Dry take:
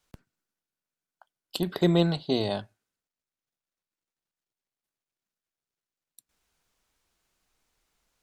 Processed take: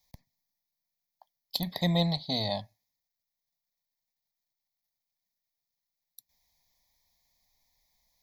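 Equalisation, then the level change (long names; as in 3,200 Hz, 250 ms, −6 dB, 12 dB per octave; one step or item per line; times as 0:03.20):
Butterworth band-reject 1,500 Hz, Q 2.8
high-shelf EQ 4,700 Hz +11 dB
phaser with its sweep stopped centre 1,900 Hz, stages 8
0.0 dB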